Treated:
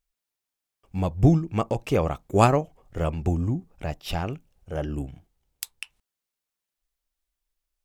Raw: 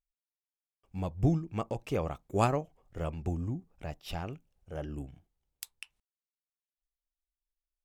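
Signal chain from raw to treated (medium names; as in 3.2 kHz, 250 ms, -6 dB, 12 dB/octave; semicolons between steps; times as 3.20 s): trim +9 dB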